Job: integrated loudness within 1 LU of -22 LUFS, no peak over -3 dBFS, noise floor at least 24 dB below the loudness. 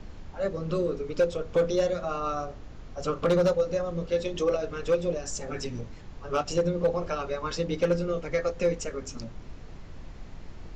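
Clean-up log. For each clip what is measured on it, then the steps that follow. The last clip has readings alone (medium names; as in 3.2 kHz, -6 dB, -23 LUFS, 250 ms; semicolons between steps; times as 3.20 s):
clipped samples 0.5%; clipping level -17.0 dBFS; noise floor -44 dBFS; noise floor target -53 dBFS; loudness -28.5 LUFS; peak level -17.0 dBFS; loudness target -22.0 LUFS
-> clip repair -17 dBFS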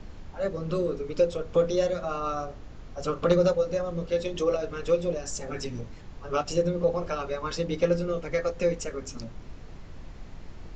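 clipped samples 0.0%; noise floor -44 dBFS; noise floor target -52 dBFS
-> noise print and reduce 8 dB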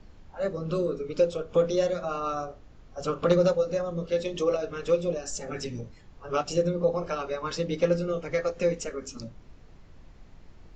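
noise floor -51 dBFS; noise floor target -53 dBFS
-> noise print and reduce 6 dB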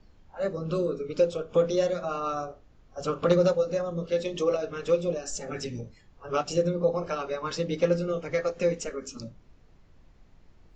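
noise floor -57 dBFS; loudness -28.5 LUFS; peak level -8.5 dBFS; loudness target -22.0 LUFS
-> trim +6.5 dB; peak limiter -3 dBFS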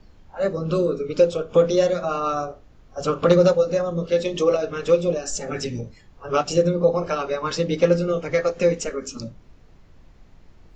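loudness -22.0 LUFS; peak level -3.0 dBFS; noise floor -51 dBFS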